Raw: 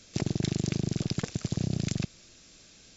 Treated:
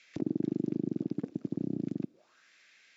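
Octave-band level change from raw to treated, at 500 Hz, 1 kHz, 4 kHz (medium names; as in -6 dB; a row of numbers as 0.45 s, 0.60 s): -1.0 dB, under -10 dB, under -20 dB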